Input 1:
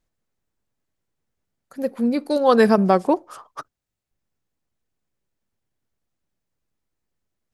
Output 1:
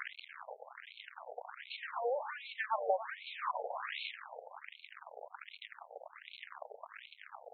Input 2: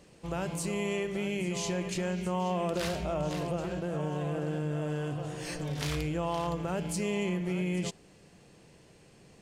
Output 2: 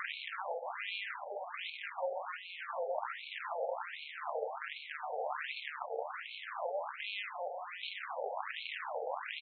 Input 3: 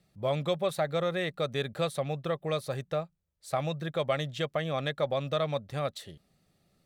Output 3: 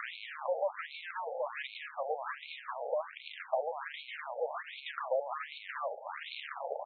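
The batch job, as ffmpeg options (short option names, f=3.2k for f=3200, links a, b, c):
-filter_complex "[0:a]aeval=exprs='val(0)+0.5*0.119*sgn(val(0))':c=same,equalizer=f=9.2k:w=0.43:g=-12,acrossover=split=89|510[a][b][c];[a]acompressor=threshold=-30dB:ratio=4[d];[b]acompressor=threshold=-33dB:ratio=4[e];[c]acompressor=threshold=-35dB:ratio=4[f];[d][e][f]amix=inputs=3:normalize=0,asplit=2[g][h];[h]acrusher=bits=4:mix=0:aa=0.5,volume=-12dB[i];[g][i]amix=inputs=2:normalize=0,aeval=exprs='0.355*(cos(1*acos(clip(val(0)/0.355,-1,1)))-cos(1*PI/2))+0.0282*(cos(7*acos(clip(val(0)/0.355,-1,1)))-cos(7*PI/2))+0.0178*(cos(8*acos(clip(val(0)/0.355,-1,1)))-cos(8*PI/2))':c=same,asplit=2[j][k];[k]aecho=0:1:288|576|864:0.224|0.0694|0.0215[l];[j][l]amix=inputs=2:normalize=0,afftfilt=real='re*between(b*sr/1024,600*pow(3100/600,0.5+0.5*sin(2*PI*1.3*pts/sr))/1.41,600*pow(3100/600,0.5+0.5*sin(2*PI*1.3*pts/sr))*1.41)':imag='im*between(b*sr/1024,600*pow(3100/600,0.5+0.5*sin(2*PI*1.3*pts/sr))/1.41,600*pow(3100/600,0.5+0.5*sin(2*PI*1.3*pts/sr))*1.41)':win_size=1024:overlap=0.75,volume=3dB"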